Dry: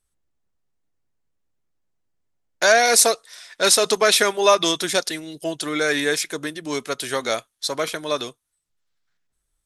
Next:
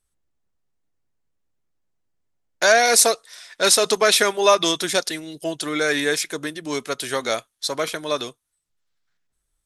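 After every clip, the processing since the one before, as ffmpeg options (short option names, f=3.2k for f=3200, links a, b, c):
-af anull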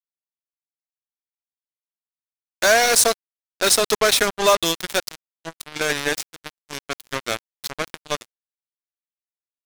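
-af "acrusher=bits=2:mix=0:aa=0.5,volume=-1dB"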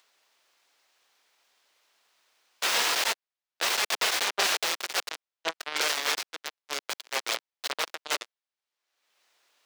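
-filter_complex "[0:a]aeval=exprs='(mod(6.68*val(0)+1,2)-1)/6.68':c=same,acrossover=split=380 6000:gain=0.0631 1 0.178[a][b][c];[a][b][c]amix=inputs=3:normalize=0,acompressor=mode=upward:threshold=-52dB:ratio=2.5,volume=5.5dB"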